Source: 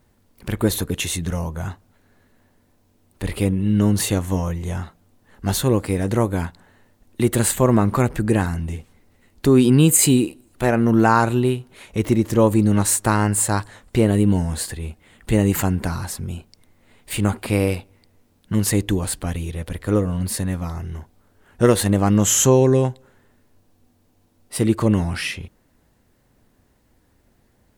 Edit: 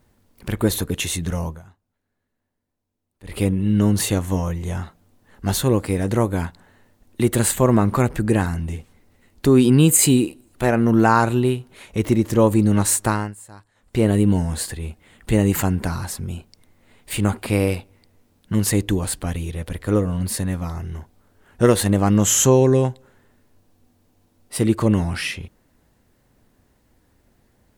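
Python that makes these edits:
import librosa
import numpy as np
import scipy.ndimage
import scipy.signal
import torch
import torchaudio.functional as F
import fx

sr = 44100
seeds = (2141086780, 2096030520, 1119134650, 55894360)

y = fx.edit(x, sr, fx.fade_down_up(start_s=1.5, length_s=1.86, db=-19.5, fade_s=0.15, curve='qua'),
    fx.fade_down_up(start_s=13.04, length_s=1.02, db=-22.5, fade_s=0.31), tone=tone)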